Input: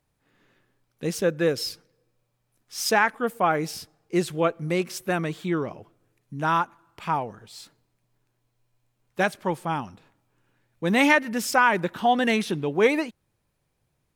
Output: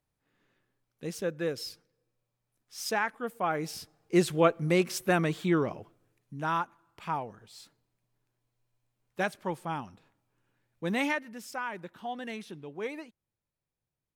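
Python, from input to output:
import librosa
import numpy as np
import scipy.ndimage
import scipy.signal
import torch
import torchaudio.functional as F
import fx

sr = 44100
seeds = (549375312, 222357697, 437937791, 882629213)

y = fx.gain(x, sr, db=fx.line((3.36, -9.0), (4.19, 0.0), (5.73, 0.0), (6.45, -7.0), (10.86, -7.0), (11.37, -16.5)))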